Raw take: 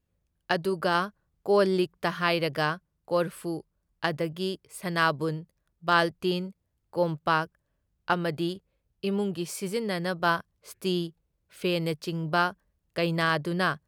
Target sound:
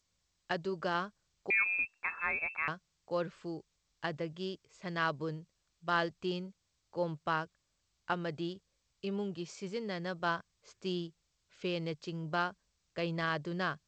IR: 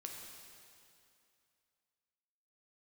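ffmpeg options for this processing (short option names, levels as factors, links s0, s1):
-filter_complex "[0:a]asettb=1/sr,asplit=3[s0][s1][s2];[s0]atrim=end=1.504[s3];[s1]atrim=start=1.5:end=2.68,asetpts=PTS-STARTPTS,afade=t=in:d=0.004:c=qsin,afade=t=out:st=1.176:d=0.004:c=qsin,lowpass=f=2400:t=q:w=0.5098,lowpass=f=2400:t=q:w=0.6013,lowpass=f=2400:t=q:w=0.9,lowpass=f=2400:t=q:w=2.563,afreqshift=-2800[s4];[s2]atrim=start=2.676[s5];[s3][s4]acrossfade=d=0.004:c1=hsin:c2=qsin[s6];[s6][s5]acrossfade=d=0.004:c1=qsin:c2=hsin,volume=0.376" -ar 16000 -c:a g722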